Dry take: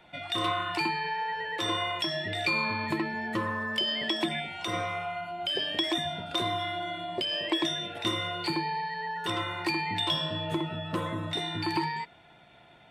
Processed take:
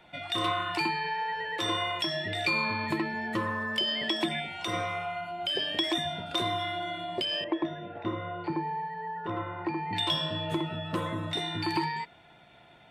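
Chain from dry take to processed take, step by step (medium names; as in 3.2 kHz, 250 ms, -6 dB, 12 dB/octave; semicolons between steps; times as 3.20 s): 7.44–9.93 s: low-pass 1.2 kHz 12 dB/octave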